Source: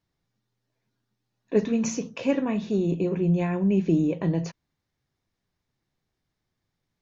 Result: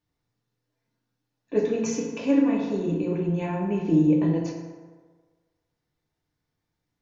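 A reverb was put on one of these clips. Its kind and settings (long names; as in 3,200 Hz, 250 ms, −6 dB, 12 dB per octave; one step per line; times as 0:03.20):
feedback delay network reverb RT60 1.5 s, low-frequency decay 0.8×, high-frequency decay 0.5×, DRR −1.5 dB
level −4 dB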